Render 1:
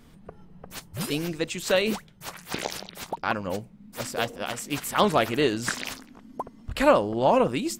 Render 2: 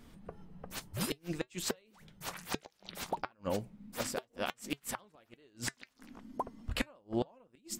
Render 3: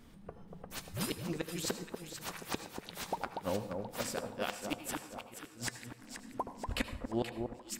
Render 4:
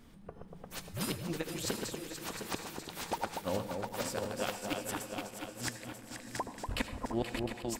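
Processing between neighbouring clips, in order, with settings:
gate with flip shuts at −16 dBFS, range −37 dB; flanger 1.1 Hz, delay 3 ms, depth 1.2 ms, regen −78%; level +1 dB
delay that swaps between a low-pass and a high-pass 239 ms, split 1,200 Hz, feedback 64%, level −5 dB; on a send at −11.5 dB: convolution reverb, pre-delay 72 ms; on the sum: level −1 dB
feedback delay that plays each chunk backwards 354 ms, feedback 58%, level −5 dB

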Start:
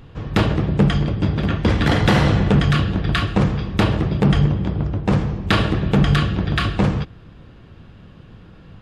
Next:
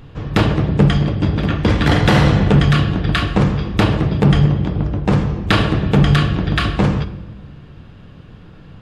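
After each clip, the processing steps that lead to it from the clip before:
rectangular room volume 760 cubic metres, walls mixed, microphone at 0.4 metres
level +2.5 dB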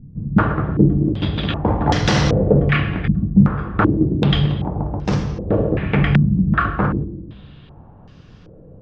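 low-pass on a step sequencer 2.6 Hz 200–5,800 Hz
level −4.5 dB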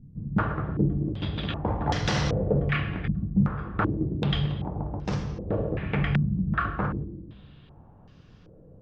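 dynamic equaliser 280 Hz, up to −4 dB, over −24 dBFS, Q 1.2
level −8.5 dB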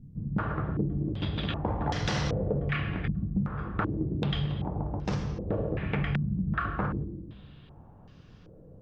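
downward compressor, threshold −25 dBFS, peak gain reduction 8.5 dB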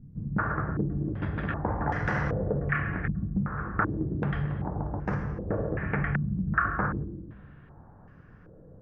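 high shelf with overshoot 2,500 Hz −14 dB, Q 3

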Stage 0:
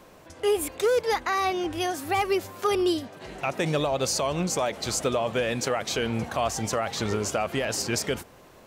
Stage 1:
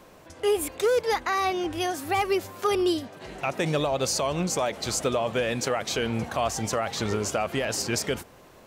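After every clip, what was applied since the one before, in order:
no processing that can be heard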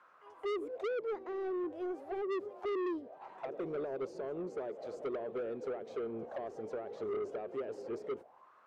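echo ahead of the sound 219 ms −18 dB
envelope filter 400–1,400 Hz, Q 5.5, down, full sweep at −24 dBFS
soft clipping −34 dBFS, distortion −5 dB
level +1 dB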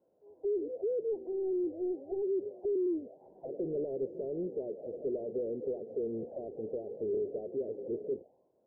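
inverse Chebyshev low-pass filter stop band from 1,100 Hz, stop band 40 dB
level +4.5 dB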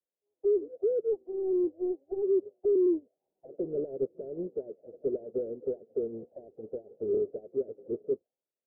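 expander for the loud parts 2.5 to 1, over −53 dBFS
level +7 dB

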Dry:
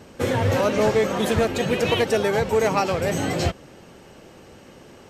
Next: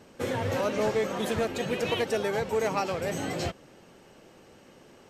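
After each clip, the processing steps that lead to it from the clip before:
parametric band 63 Hz −6 dB 1.9 octaves
level −7 dB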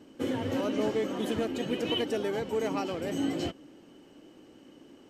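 hollow resonant body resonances 290/3,000 Hz, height 16 dB, ringing for 45 ms
level −6.5 dB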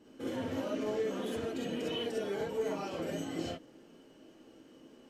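brickwall limiter −25 dBFS, peak gain reduction 7 dB
reverb whose tail is shaped and stops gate 80 ms rising, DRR −4 dB
level −8 dB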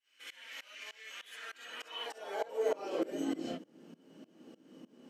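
shaped tremolo saw up 3.3 Hz, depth 95%
high-pass filter sweep 2,200 Hz → 180 Hz, 0:01.20–0:03.75
level +2 dB

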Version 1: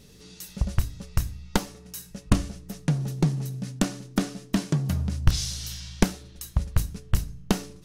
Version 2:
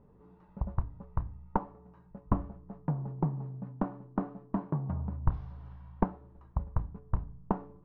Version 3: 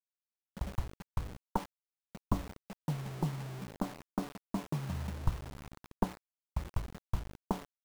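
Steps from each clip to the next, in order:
transistor ladder low-pass 1,100 Hz, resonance 60%; level +2.5 dB
bit reduction 7 bits; level −3.5 dB

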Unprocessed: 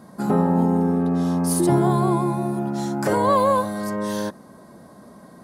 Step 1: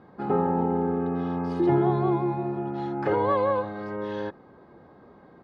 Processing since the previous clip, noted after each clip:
low-pass filter 3,100 Hz 24 dB per octave
comb filter 2.4 ms, depth 54%
level −4.5 dB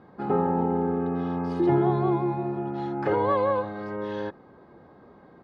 no processing that can be heard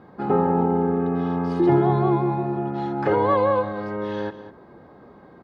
single-tap delay 202 ms −14 dB
level +4 dB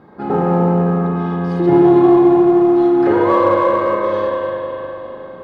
convolution reverb RT60 3.8 s, pre-delay 33 ms, DRR −4 dB
in parallel at −12 dB: hard clipping −17.5 dBFS, distortion −7 dB

